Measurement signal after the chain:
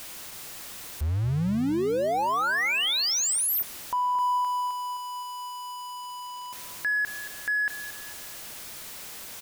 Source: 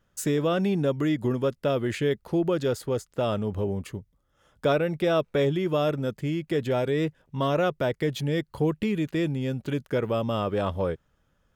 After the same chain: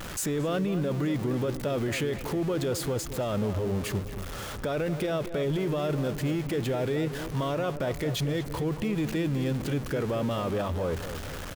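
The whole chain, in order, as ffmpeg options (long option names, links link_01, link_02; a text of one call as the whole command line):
ffmpeg -i in.wav -filter_complex "[0:a]aeval=exprs='val(0)+0.5*0.0251*sgn(val(0))':channel_layout=same,alimiter=limit=-22.5dB:level=0:latency=1:release=19,asplit=2[link_01][link_02];[link_02]adelay=226,lowpass=frequency=1900:poles=1,volume=-10.5dB,asplit=2[link_03][link_04];[link_04]adelay=226,lowpass=frequency=1900:poles=1,volume=0.52,asplit=2[link_05][link_06];[link_06]adelay=226,lowpass=frequency=1900:poles=1,volume=0.52,asplit=2[link_07][link_08];[link_08]adelay=226,lowpass=frequency=1900:poles=1,volume=0.52,asplit=2[link_09][link_10];[link_10]adelay=226,lowpass=frequency=1900:poles=1,volume=0.52,asplit=2[link_11][link_12];[link_12]adelay=226,lowpass=frequency=1900:poles=1,volume=0.52[link_13];[link_01][link_03][link_05][link_07][link_09][link_11][link_13]amix=inputs=7:normalize=0" out.wav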